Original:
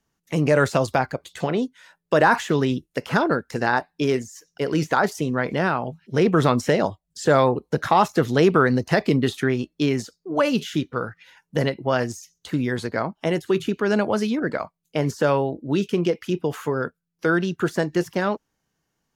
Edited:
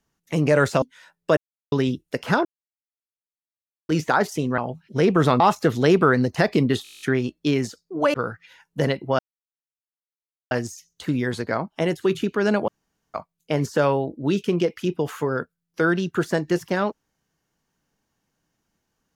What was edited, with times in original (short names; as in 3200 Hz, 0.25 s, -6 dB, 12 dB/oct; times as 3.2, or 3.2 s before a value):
0.82–1.65 cut
2.2–2.55 mute
3.28–4.72 mute
5.41–5.76 cut
6.58–7.93 cut
9.36 stutter 0.02 s, 10 plays
10.49–10.91 cut
11.96 insert silence 1.32 s
14.13–14.59 room tone